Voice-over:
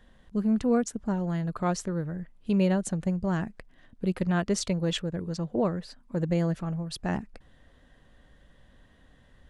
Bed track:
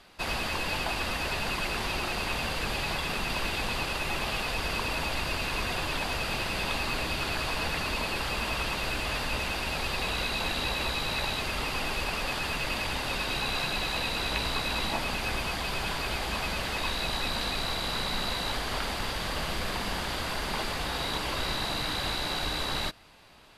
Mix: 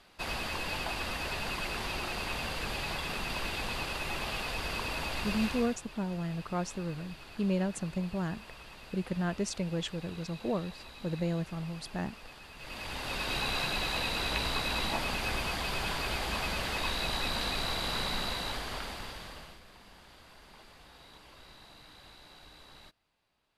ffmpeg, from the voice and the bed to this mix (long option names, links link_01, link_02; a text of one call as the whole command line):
ffmpeg -i stem1.wav -i stem2.wav -filter_complex "[0:a]adelay=4900,volume=-6dB[link_01];[1:a]volume=12.5dB,afade=type=out:start_time=5.44:duration=0.35:silence=0.188365,afade=type=in:start_time=12.55:duration=0.81:silence=0.141254,afade=type=out:start_time=18.04:duration=1.57:silence=0.0891251[link_02];[link_01][link_02]amix=inputs=2:normalize=0" out.wav